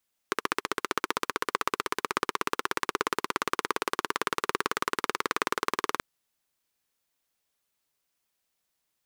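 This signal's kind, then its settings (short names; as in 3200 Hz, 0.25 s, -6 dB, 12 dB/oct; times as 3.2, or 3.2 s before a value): single-cylinder engine model, changing speed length 5.68 s, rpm 1800, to 2300, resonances 410/1100 Hz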